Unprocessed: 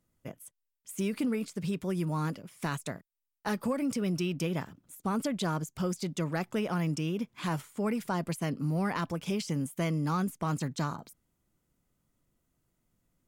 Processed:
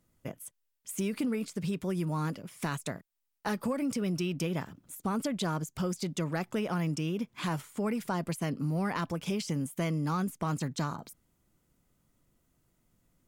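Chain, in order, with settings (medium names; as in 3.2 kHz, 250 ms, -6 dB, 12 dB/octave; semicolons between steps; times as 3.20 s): compression 1.5:1, threshold -42 dBFS, peak gain reduction 6 dB; trim +4.5 dB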